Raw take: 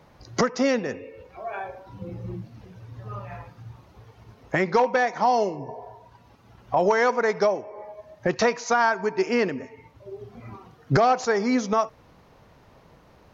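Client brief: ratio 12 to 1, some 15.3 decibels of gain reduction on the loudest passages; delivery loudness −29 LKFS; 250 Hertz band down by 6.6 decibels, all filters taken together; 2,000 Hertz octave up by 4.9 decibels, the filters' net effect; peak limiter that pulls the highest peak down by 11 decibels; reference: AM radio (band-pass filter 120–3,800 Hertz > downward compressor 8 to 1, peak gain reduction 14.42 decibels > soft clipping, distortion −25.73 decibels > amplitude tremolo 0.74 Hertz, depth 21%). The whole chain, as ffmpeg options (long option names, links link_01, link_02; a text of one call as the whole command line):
ffmpeg -i in.wav -af "equalizer=frequency=250:width_type=o:gain=-8,equalizer=frequency=2000:width_type=o:gain=6.5,acompressor=threshold=-31dB:ratio=12,alimiter=level_in=4dB:limit=-24dB:level=0:latency=1,volume=-4dB,highpass=120,lowpass=3800,acompressor=threshold=-47dB:ratio=8,asoftclip=threshold=-38.5dB,tremolo=f=0.74:d=0.21,volume=23.5dB" out.wav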